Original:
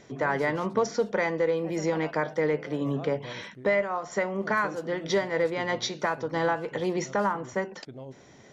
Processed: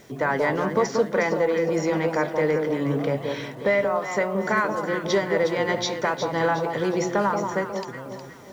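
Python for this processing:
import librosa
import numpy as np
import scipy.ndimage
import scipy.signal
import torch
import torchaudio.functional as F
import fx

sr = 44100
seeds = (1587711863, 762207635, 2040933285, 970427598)

p1 = fx.quant_dither(x, sr, seeds[0], bits=10, dither='none')
p2 = p1 + fx.echo_alternate(p1, sr, ms=181, hz=1100.0, feedback_pct=63, wet_db=-4.5, dry=0)
y = p2 * 10.0 ** (3.0 / 20.0)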